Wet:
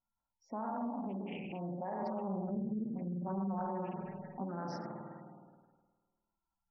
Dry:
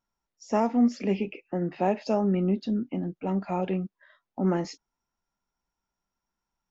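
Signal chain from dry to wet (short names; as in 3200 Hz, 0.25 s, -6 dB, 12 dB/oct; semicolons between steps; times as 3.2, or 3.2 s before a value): spectral trails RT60 1.54 s; low-pass opened by the level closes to 1300 Hz, open at -19.5 dBFS; flange 0.93 Hz, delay 9.7 ms, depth 8.7 ms, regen -88%; spring tank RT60 1.3 s, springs 51 ms, chirp 25 ms, DRR 1 dB; limiter -20.5 dBFS, peak gain reduction 9 dB; 2.01–4.44 comb 5.3 ms, depth 83%; compressor 1.5:1, threshold -38 dBFS, peak gain reduction 6.5 dB; fifteen-band EQ 160 Hz -4 dB, 400 Hz -8 dB, 2500 Hz -4 dB; spectral gate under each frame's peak -20 dB strong; high shelf 2100 Hz +8.5 dB; Doppler distortion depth 0.3 ms; gain -3.5 dB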